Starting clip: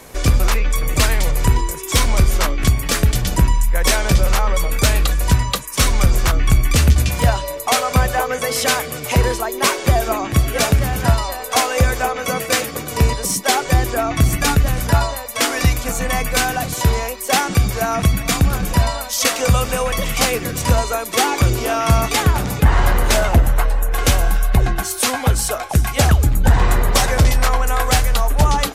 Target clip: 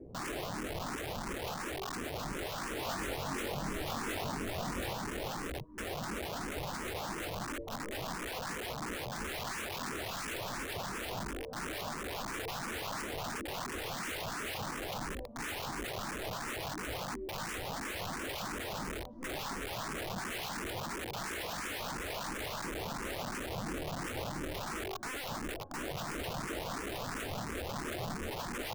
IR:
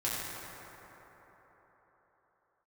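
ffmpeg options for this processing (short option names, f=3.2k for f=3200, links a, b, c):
-filter_complex "[0:a]aemphasis=mode=reproduction:type=75fm,alimiter=limit=-15.5dB:level=0:latency=1:release=72,aeval=exprs='0.168*(cos(1*acos(clip(val(0)/0.168,-1,1)))-cos(1*PI/2))+0.00133*(cos(2*acos(clip(val(0)/0.168,-1,1)))-cos(2*PI/2))+0.0211*(cos(4*acos(clip(val(0)/0.168,-1,1)))-cos(4*PI/2))+0.00168*(cos(6*acos(clip(val(0)/0.168,-1,1)))-cos(6*PI/2))':c=same,lowpass=f=310:t=q:w=3.7,aeval=exprs='(mod(18.8*val(0)+1,2)-1)/18.8':c=same,asettb=1/sr,asplit=3[a][b][c];[a]atrim=end=2.734[d];[b]atrim=start=2.73:end=4.93,asetpts=PTS-STARTPTS,afade=t=in:d=0.004:c=qsin,afade=t=out:st=2.196:d=0.004:c=qsin,asplit=2[e][f];[f]adelay=22,volume=-3dB[g];[e][g]amix=inputs=2:normalize=0,atrim=end_sample=97020[h];[c]atrim=start=4.926[i];[d][h]acrossfade=d=0.004:c1=hsin:c2=qsin[j];[j][i]acrossfade=d=0.004:c1=qsin:c2=hsin,asplit=2[k][l];[l]afreqshift=2.9[m];[k][m]amix=inputs=2:normalize=1,volume=-6dB"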